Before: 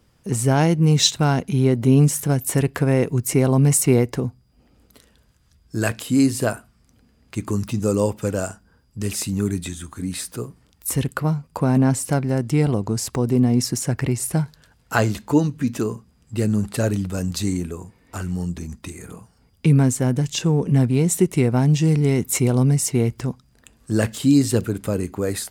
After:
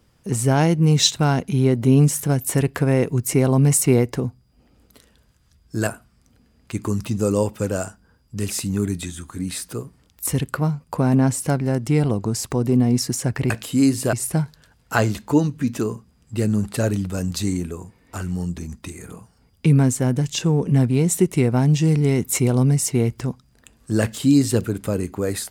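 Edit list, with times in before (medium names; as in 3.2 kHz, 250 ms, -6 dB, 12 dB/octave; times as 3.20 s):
5.87–6.50 s: move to 14.13 s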